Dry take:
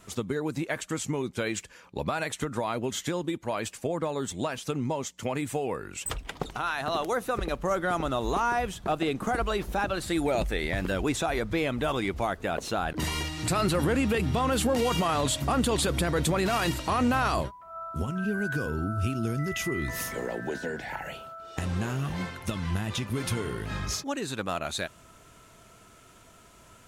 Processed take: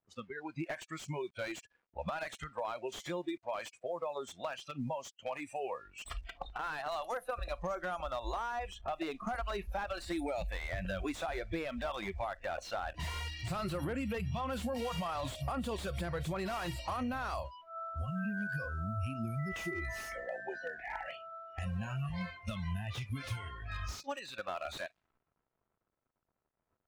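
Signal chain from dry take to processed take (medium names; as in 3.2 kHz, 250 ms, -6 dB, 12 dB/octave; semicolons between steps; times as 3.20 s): word length cut 8-bit, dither none; spectral noise reduction 21 dB; compression 12:1, threshold -29 dBFS, peak gain reduction 8.5 dB; level-controlled noise filter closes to 1.1 kHz, open at -29.5 dBFS; slew-rate limiter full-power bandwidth 40 Hz; trim -3.5 dB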